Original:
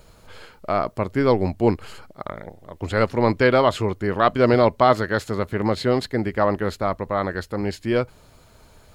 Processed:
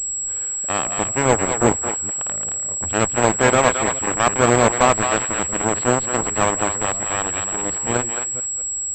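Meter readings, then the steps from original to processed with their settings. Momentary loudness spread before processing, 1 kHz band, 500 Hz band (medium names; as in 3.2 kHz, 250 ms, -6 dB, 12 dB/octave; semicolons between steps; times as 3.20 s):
17 LU, +3.0 dB, -0.5 dB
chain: chunks repeated in reverse 210 ms, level -11 dB; bass shelf 210 Hz +3.5 dB; in parallel at -1 dB: peak limiter -14.5 dBFS, peak gain reduction 11.5 dB; on the sum: Chebyshev shaper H 7 -13 dB, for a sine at -0.5 dBFS; on a send: thinning echo 220 ms, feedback 15%, high-pass 890 Hz, level -4.5 dB; on the sum: class-D stage that switches slowly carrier 7.7 kHz; trim -2.5 dB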